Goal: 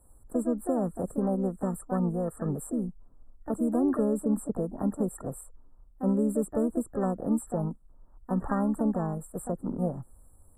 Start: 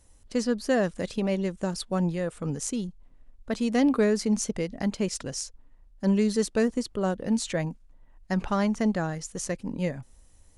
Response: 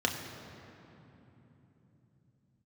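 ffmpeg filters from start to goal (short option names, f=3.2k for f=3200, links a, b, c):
-filter_complex "[0:a]acrossover=split=260|4900[a][b][c];[a]acompressor=threshold=-27dB:ratio=4[d];[b]acompressor=threshold=-29dB:ratio=4[e];[c]acompressor=threshold=-41dB:ratio=4[f];[d][e][f]amix=inputs=3:normalize=0,afftfilt=real='re*(1-between(b*sr/4096,1400,7400))':imag='im*(1-between(b*sr/4096,1400,7400))':win_size=4096:overlap=0.75,asplit=2[g][h];[h]asetrate=58866,aresample=44100,atempo=0.749154,volume=-8dB[i];[g][i]amix=inputs=2:normalize=0"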